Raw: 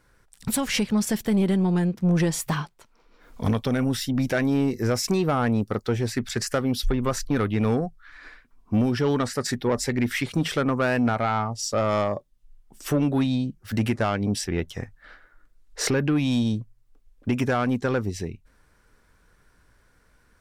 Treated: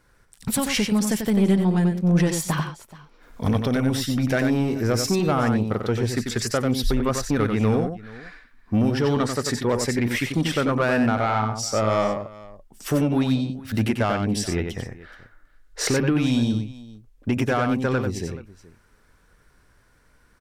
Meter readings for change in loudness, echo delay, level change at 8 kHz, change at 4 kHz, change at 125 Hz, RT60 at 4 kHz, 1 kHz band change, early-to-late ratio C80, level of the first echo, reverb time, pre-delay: +2.0 dB, 92 ms, +2.0 dB, +2.0 dB, +2.0 dB, none, +2.0 dB, none, -6.0 dB, none, none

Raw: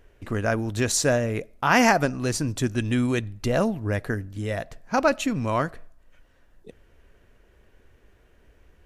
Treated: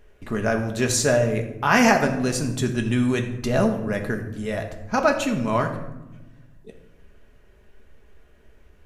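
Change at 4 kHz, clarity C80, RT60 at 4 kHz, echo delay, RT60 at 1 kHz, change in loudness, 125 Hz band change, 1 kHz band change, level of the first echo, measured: +1.0 dB, 11.0 dB, 0.55 s, none, 0.95 s, +2.0 dB, +1.0 dB, +1.0 dB, none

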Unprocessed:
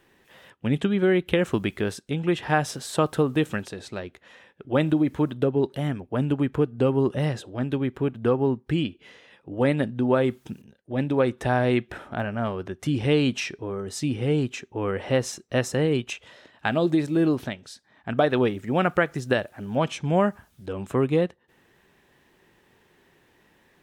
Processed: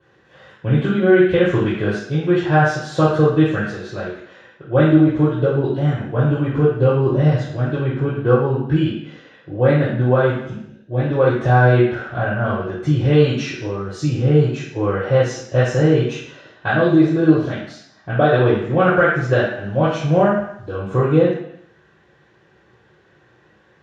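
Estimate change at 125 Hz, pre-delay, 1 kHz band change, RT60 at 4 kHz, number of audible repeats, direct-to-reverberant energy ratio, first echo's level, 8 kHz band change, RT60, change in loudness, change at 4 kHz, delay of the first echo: +10.5 dB, 3 ms, +7.5 dB, 0.75 s, none, -9.0 dB, none, n/a, 0.70 s, +7.5 dB, +2.0 dB, none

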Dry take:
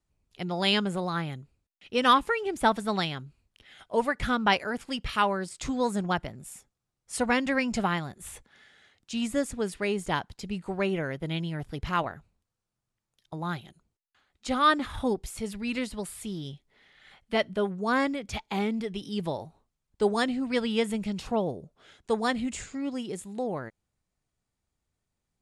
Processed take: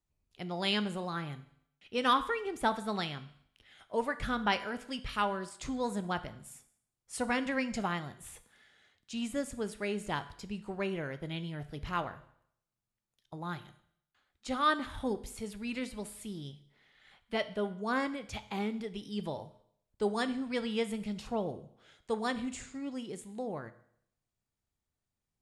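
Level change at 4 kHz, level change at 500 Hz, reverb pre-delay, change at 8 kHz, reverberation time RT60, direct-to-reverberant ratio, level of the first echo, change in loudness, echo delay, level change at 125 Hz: -6.0 dB, -6.5 dB, 8 ms, -6.0 dB, 0.70 s, 11.0 dB, none, -6.0 dB, none, -6.5 dB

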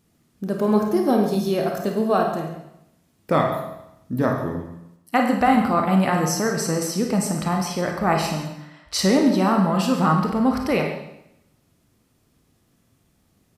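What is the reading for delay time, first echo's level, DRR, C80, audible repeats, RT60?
0.138 s, -14.0 dB, 1.5 dB, 7.0 dB, 1, 0.80 s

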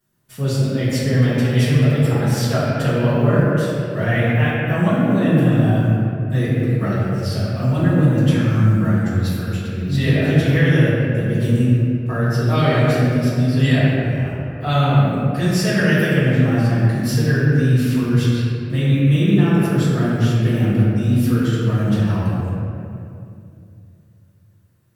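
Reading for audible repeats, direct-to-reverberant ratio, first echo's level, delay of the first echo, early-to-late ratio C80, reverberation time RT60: none, -13.0 dB, none, none, -2.0 dB, 2.5 s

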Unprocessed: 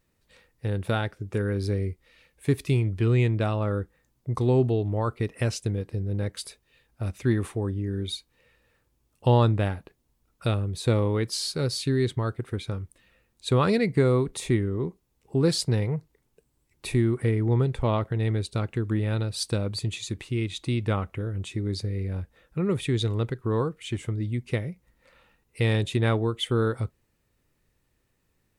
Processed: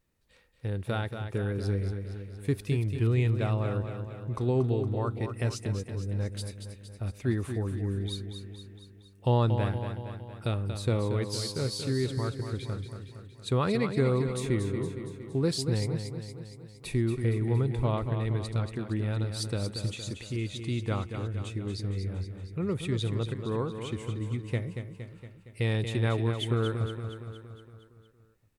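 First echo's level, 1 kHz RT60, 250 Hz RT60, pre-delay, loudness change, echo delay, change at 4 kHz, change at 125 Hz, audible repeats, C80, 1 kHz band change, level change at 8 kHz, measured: -8.0 dB, none, none, none, -4.0 dB, 0.232 s, -4.5 dB, -3.0 dB, 6, none, -4.5 dB, -4.5 dB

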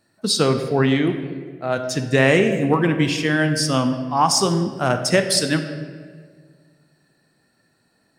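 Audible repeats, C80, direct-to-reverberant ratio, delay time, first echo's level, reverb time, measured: none, 10.0 dB, 6.5 dB, none, none, 1.7 s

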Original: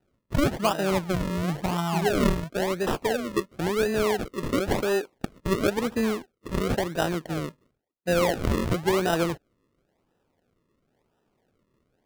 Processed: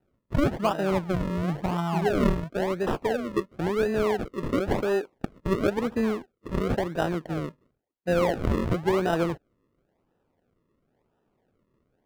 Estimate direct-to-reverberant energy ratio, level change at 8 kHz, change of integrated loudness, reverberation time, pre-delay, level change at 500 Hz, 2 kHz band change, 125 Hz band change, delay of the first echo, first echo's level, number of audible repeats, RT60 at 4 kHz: none, -9.5 dB, -0.5 dB, none, none, -0.5 dB, -3.0 dB, 0.0 dB, none, none, none, none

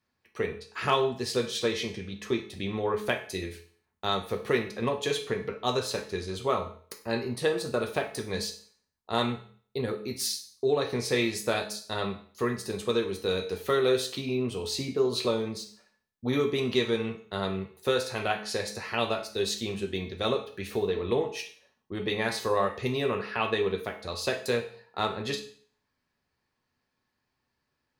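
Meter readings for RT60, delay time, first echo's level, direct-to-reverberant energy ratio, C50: 0.50 s, none, none, 4.0 dB, 10.5 dB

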